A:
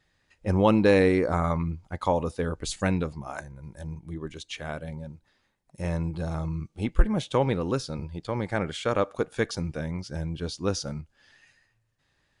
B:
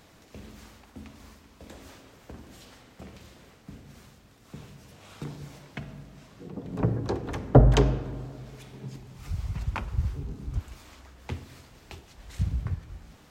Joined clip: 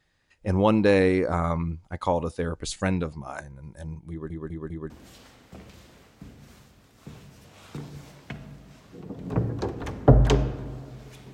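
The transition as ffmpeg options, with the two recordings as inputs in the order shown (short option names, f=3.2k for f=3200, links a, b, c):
-filter_complex "[0:a]apad=whole_dur=11.33,atrim=end=11.33,asplit=4[a][b][c][d];[a]atrim=end=4.302[e];[b]atrim=start=4.098:end=4.302[f];[c]atrim=start=4.098:end=4.302[g];[d]atrim=start=4.098:end=4.302[h];[1:a]atrim=start=2.368:end=8.8[i];[e][f]acrossfade=d=0.004:c1=hsin:c2=hsin[j];[j][g]acrossfade=d=0.004:c1=hsin:c2=hsin[k];[k][h]acrossfade=d=0.004:c1=hsin:c2=hsin[l];[l][i]acrossfade=d=0.004:c1=hsin:c2=hsin"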